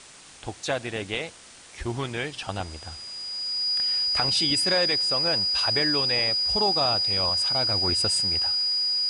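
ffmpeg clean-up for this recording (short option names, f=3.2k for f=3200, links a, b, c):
-af "bandreject=f=4.9k:w=30,afftdn=nr=25:nf=-48"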